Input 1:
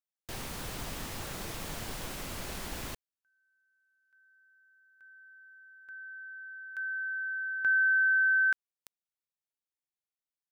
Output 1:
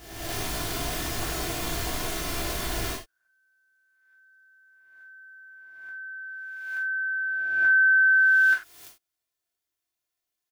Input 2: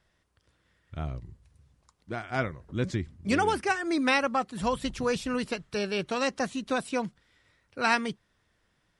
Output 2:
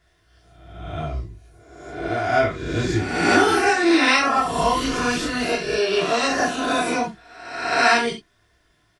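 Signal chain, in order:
peak hold with a rise ahead of every peak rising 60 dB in 1.06 s
comb filter 2.9 ms, depth 47%
reverb whose tail is shaped and stops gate 120 ms falling, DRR −4 dB

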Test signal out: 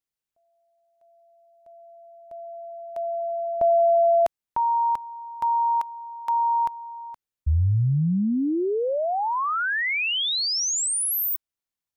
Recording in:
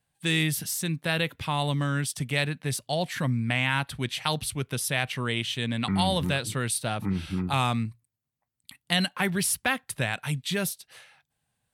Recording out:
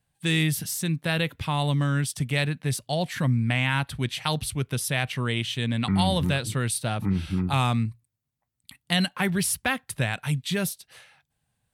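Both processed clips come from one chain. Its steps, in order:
low-shelf EQ 160 Hz +7 dB

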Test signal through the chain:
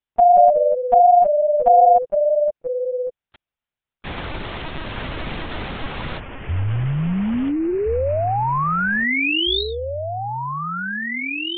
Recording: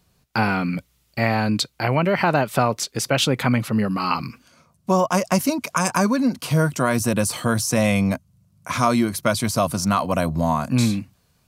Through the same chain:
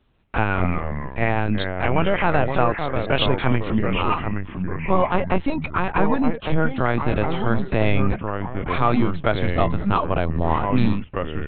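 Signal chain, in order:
linear-prediction vocoder at 8 kHz pitch kept
delay with pitch and tempo change per echo 147 ms, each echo −3 semitones, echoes 2, each echo −6 dB

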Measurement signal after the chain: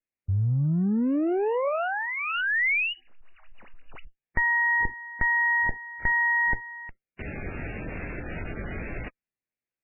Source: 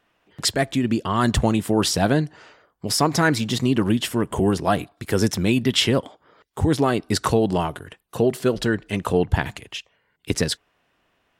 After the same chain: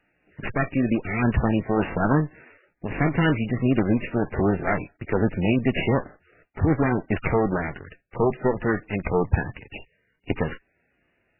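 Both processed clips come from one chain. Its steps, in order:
lower of the sound and its delayed copy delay 0.48 ms
MP3 8 kbit/s 11,025 Hz

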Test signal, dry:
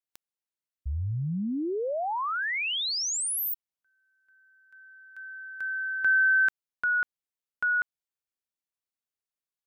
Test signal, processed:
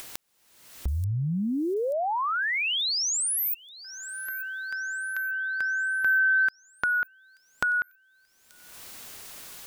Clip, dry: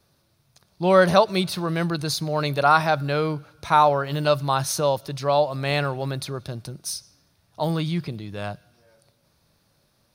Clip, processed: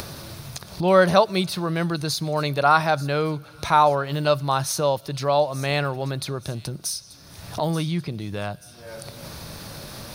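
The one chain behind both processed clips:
upward compression 4 to 1, threshold −24 dBFS
delay with a high-pass on its return 883 ms, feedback 50%, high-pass 5,500 Hz, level −12.5 dB

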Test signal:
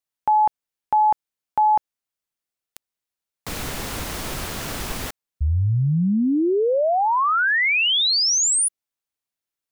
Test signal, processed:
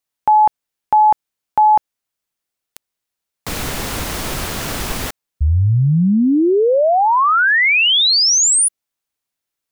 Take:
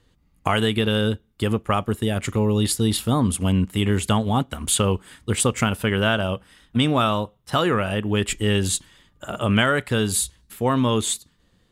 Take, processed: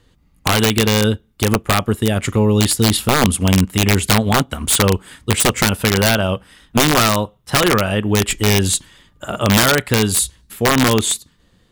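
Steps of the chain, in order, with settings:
wrap-around overflow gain 12 dB
level +6 dB

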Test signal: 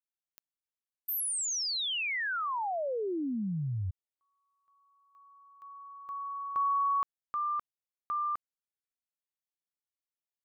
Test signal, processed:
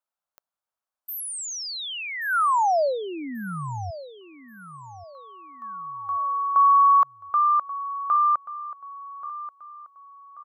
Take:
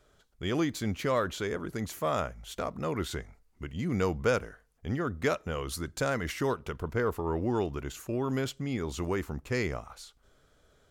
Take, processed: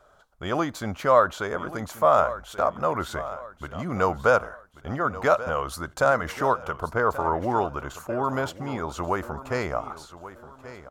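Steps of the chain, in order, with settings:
flat-topped bell 900 Hz +12.5 dB
on a send: repeating echo 1,133 ms, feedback 38%, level −15 dB

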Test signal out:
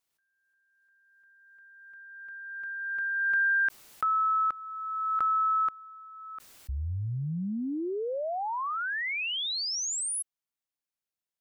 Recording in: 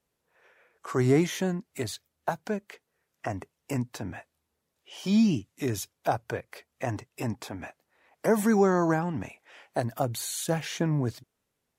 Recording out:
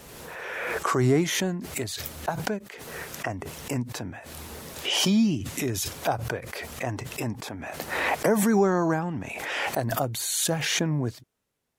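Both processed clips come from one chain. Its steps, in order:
background raised ahead of every attack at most 26 dB per second

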